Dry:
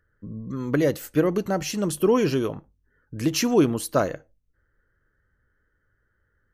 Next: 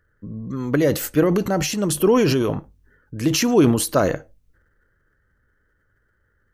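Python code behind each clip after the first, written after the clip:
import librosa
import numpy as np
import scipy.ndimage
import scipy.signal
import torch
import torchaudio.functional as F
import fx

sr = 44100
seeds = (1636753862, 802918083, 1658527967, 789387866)

y = fx.transient(x, sr, attack_db=0, sustain_db=8)
y = y * 10.0 ** (3.0 / 20.0)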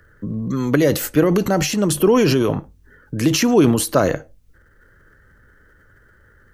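y = fx.band_squash(x, sr, depth_pct=40)
y = y * 10.0 ** (2.5 / 20.0)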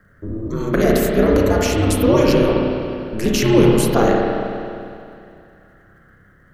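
y = x * np.sin(2.0 * np.pi * 110.0 * np.arange(len(x)) / sr)
y = fx.rev_spring(y, sr, rt60_s=2.5, pass_ms=(31, 51), chirp_ms=40, drr_db=-2.0)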